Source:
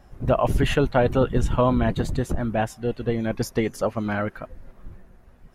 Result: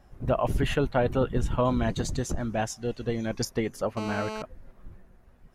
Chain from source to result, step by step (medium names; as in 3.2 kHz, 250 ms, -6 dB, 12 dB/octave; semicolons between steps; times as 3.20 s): 1.65–3.45 s: peaking EQ 6.1 kHz +14 dB 0.97 oct; 3.97–4.42 s: mobile phone buzz -30 dBFS; trim -5 dB